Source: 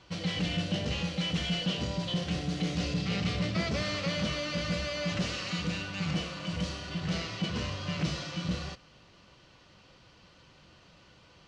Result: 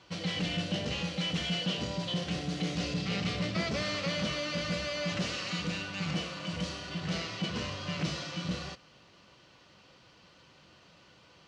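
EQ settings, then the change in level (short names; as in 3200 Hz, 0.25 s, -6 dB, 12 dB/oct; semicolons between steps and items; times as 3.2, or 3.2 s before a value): HPF 140 Hz 6 dB/oct; 0.0 dB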